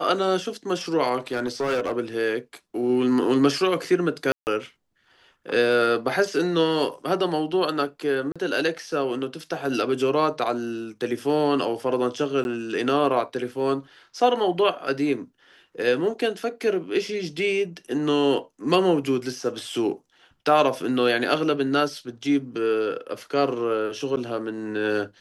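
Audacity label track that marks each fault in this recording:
1.280000	1.930000	clipped -20.5 dBFS
4.320000	4.470000	dropout 149 ms
8.320000	8.360000	dropout 36 ms
12.440000	12.450000	dropout 11 ms
24.160000	24.170000	dropout 9.3 ms

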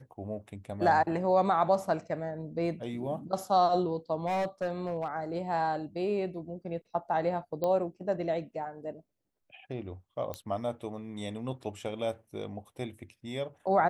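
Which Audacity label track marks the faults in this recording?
4.260000	5.080000	clipped -27 dBFS
7.640000	7.640000	pop -19 dBFS
10.340000	10.340000	pop -21 dBFS

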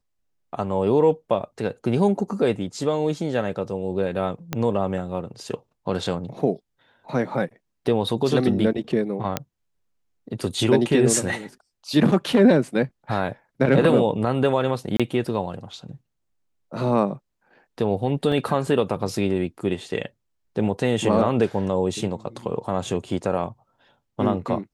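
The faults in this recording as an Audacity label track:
4.530000	4.530000	pop -10 dBFS
9.370000	9.370000	pop -8 dBFS
14.970000	15.000000	dropout 26 ms
18.320000	18.320000	dropout 2.5 ms

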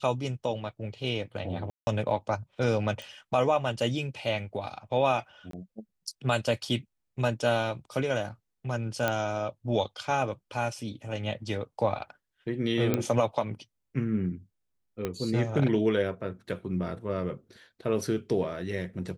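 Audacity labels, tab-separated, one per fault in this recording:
1.700000	1.870000	dropout 170 ms
3.020000	3.020000	pop
5.510000	5.530000	dropout 23 ms
9.080000	9.080000	pop -12 dBFS
12.940000	12.940000	pop -12 dBFS
15.050000	15.050000	pop -17 dBFS

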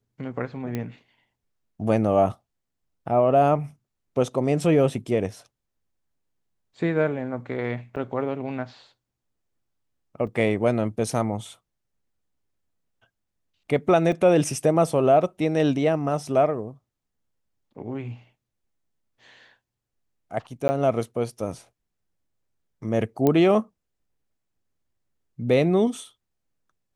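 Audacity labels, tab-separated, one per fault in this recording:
0.750000	0.750000	pop -16 dBFS
7.960000	7.970000	dropout 7.1 ms
10.270000	10.270000	dropout 3.8 ms
14.120000	14.120000	dropout 2.8 ms
20.680000	20.690000	dropout 10 ms
23.270000	23.270000	pop -9 dBFS

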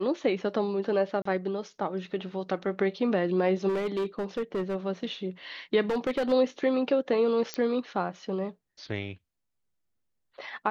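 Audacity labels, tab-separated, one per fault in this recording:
1.220000	1.250000	dropout 34 ms
3.680000	4.750000	clipped -25.5 dBFS
5.900000	6.330000	clipped -23.5 dBFS
7.540000	7.540000	pop -15 dBFS

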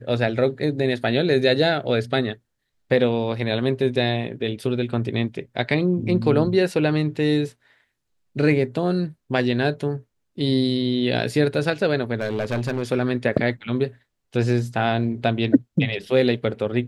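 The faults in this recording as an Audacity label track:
12.150000	12.820000	clipped -19.5 dBFS

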